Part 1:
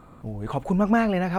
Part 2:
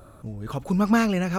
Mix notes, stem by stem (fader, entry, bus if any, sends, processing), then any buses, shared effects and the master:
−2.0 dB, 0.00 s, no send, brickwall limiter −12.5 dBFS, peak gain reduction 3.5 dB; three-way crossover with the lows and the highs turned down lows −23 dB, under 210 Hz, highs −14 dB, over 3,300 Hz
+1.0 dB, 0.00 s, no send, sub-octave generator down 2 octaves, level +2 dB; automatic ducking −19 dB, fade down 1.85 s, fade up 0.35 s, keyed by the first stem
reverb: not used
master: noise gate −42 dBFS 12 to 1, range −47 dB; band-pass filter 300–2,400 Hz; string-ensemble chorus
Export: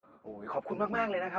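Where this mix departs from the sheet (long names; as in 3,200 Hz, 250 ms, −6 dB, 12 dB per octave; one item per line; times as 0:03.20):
stem 1: missing three-way crossover with the lows and the highs turned down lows −23 dB, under 210 Hz, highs −14 dB, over 3,300 Hz
stem 2: polarity flipped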